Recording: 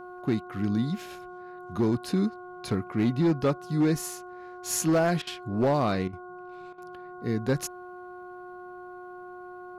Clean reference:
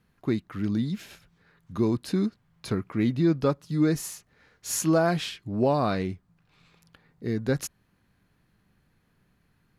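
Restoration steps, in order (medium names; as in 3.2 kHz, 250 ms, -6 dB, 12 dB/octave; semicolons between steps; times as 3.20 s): clip repair -18 dBFS; de-hum 361.2 Hz, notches 4; interpolate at 5.22/6.08/6.73 s, 49 ms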